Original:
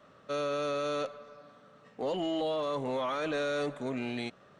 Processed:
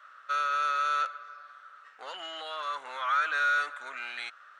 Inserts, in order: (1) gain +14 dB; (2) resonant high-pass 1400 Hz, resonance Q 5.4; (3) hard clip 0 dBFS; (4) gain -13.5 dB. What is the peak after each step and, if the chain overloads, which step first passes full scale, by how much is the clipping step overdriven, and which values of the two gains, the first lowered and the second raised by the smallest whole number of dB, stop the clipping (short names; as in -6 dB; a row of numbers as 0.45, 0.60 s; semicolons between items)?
-10.0, -4.5, -4.5, -18.0 dBFS; no overload